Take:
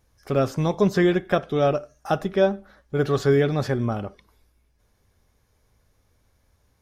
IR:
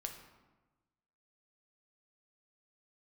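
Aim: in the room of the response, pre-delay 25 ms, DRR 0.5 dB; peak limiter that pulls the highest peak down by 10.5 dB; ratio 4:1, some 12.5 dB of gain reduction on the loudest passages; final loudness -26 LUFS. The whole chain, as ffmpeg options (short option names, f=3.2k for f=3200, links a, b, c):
-filter_complex "[0:a]acompressor=threshold=-30dB:ratio=4,alimiter=level_in=3.5dB:limit=-24dB:level=0:latency=1,volume=-3.5dB,asplit=2[a][b];[1:a]atrim=start_sample=2205,adelay=25[c];[b][c]afir=irnorm=-1:irlink=0,volume=1.5dB[d];[a][d]amix=inputs=2:normalize=0,volume=9dB"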